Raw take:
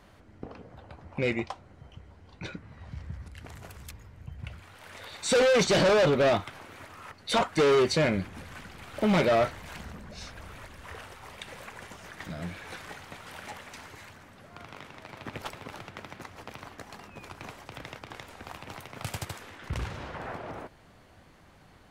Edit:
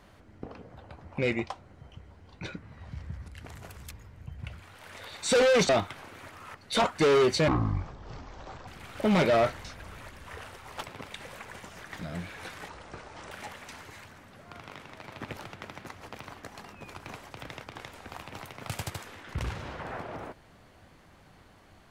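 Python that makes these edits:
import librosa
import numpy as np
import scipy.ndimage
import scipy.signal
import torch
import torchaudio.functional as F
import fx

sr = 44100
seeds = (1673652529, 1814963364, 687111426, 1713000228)

y = fx.edit(x, sr, fx.cut(start_s=5.69, length_s=0.57),
    fx.speed_span(start_s=8.05, length_s=0.61, speed=0.51),
    fx.cut(start_s=9.63, length_s=0.59),
    fx.speed_span(start_s=12.96, length_s=0.4, speed=0.64),
    fx.move(start_s=15.44, length_s=0.3, to_s=11.35), tone=tone)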